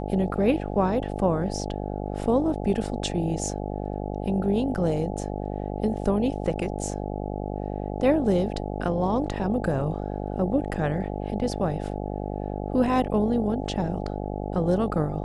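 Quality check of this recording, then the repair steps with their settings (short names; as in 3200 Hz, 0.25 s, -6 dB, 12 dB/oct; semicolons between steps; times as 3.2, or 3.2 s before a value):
buzz 50 Hz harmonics 17 -31 dBFS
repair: de-hum 50 Hz, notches 17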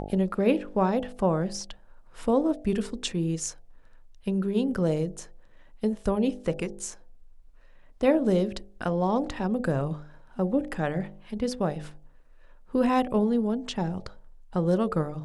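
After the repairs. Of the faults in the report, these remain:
none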